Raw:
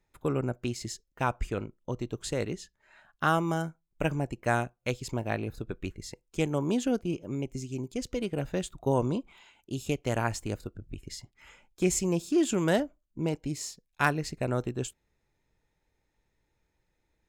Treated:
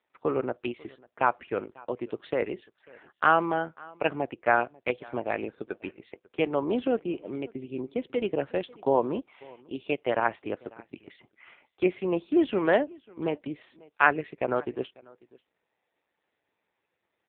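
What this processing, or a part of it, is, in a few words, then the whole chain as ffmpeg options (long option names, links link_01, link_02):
satellite phone: -filter_complex "[0:a]asplit=3[link_01][link_02][link_03];[link_01]afade=type=out:start_time=7.49:duration=0.02[link_04];[link_02]lowshelf=frequency=370:gain=4,afade=type=in:start_time=7.49:duration=0.02,afade=type=out:start_time=8.48:duration=0.02[link_05];[link_03]afade=type=in:start_time=8.48:duration=0.02[link_06];[link_04][link_05][link_06]amix=inputs=3:normalize=0,highpass=380,lowpass=3100,aecho=1:1:544:0.0631,volume=6.5dB" -ar 8000 -c:a libopencore_amrnb -b:a 5900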